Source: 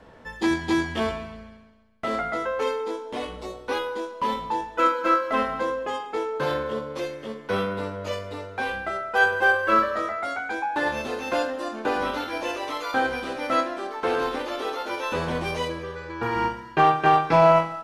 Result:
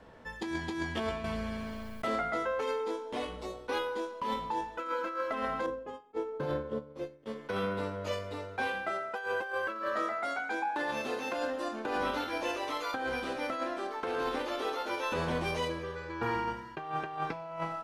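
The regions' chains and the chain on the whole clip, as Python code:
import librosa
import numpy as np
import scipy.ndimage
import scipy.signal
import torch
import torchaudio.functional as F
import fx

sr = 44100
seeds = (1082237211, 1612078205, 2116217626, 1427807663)

y = fx.chain(x, sr, fx.high_shelf(hz=7400.0, db=10.0),
    fx.env_flatten(amount_pct=70), at=(1.24, 2.07))
y = fx.chain(y, sr, fx.tilt_shelf(db=7.0, hz=720.0),
    fx.upward_expand(threshold_db=-35.0, expansion=2.5), at=(5.66, 7.26))
y = fx.chain(y, sr, fx.highpass(hz=150.0, slope=12),
    fx.echo_single(ms=79, db=-14.5), at=(8.67, 11.37))
y = fx.over_compress(y, sr, threshold_db=-26.0, ratio=-1.0)
y = fx.attack_slew(y, sr, db_per_s=580.0)
y = y * librosa.db_to_amplitude(-7.0)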